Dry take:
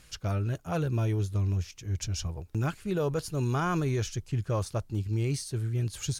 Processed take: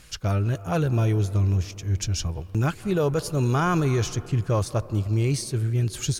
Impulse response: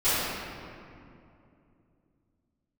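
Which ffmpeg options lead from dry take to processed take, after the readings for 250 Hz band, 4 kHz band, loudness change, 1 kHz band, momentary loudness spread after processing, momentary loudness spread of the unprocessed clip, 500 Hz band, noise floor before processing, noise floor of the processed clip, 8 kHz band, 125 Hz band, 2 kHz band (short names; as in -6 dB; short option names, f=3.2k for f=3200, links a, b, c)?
+6.0 dB, +6.0 dB, +6.0 dB, +6.0 dB, 5 LU, 5 LU, +6.0 dB, -56 dBFS, -42 dBFS, +6.0 dB, +6.0 dB, +6.0 dB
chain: -filter_complex "[0:a]asplit=2[a][b];[b]lowshelf=f=320:g=-9[c];[1:a]atrim=start_sample=2205,lowpass=2k,adelay=149[d];[c][d]afir=irnorm=-1:irlink=0,volume=-29.5dB[e];[a][e]amix=inputs=2:normalize=0,volume=6dB"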